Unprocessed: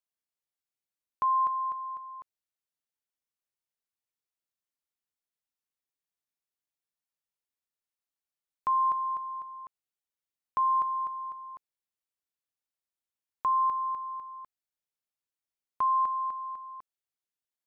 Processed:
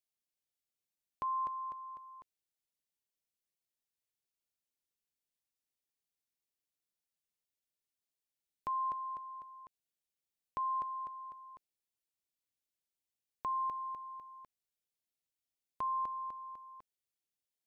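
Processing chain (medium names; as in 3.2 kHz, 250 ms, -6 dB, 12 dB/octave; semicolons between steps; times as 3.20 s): peaking EQ 1.2 kHz -11 dB 1.1 oct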